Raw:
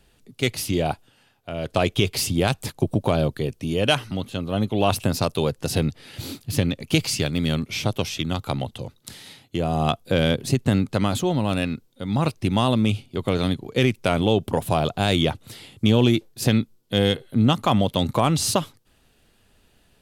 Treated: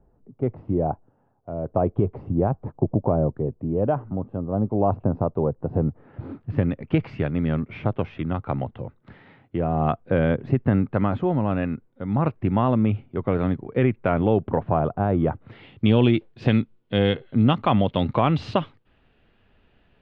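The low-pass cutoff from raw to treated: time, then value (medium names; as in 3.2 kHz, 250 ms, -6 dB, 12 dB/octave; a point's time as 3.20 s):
low-pass 24 dB/octave
5.74 s 1 kHz
6.71 s 1.9 kHz
14.47 s 1.9 kHz
15.17 s 1.2 kHz
15.70 s 2.9 kHz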